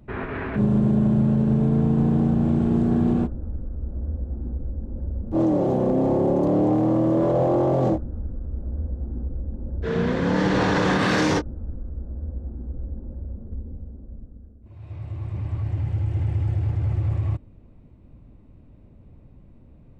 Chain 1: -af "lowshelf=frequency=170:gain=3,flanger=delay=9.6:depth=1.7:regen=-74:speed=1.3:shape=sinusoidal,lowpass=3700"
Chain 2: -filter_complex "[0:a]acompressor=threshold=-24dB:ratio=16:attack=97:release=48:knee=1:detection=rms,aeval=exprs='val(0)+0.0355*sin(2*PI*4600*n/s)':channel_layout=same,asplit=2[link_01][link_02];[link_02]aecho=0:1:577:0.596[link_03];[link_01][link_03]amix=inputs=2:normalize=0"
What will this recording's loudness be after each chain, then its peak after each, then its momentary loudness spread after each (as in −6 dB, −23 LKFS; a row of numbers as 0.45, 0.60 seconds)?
−26.5, −22.5 LKFS; −13.0, −8.5 dBFS; 14, 5 LU